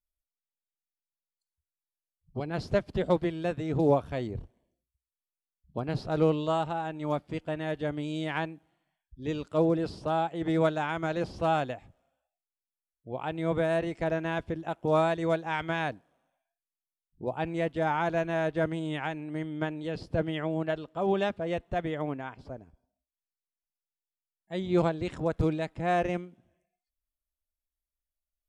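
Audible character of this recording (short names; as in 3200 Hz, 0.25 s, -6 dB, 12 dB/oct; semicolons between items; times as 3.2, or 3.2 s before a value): noise floor -94 dBFS; spectral tilt -5.5 dB/oct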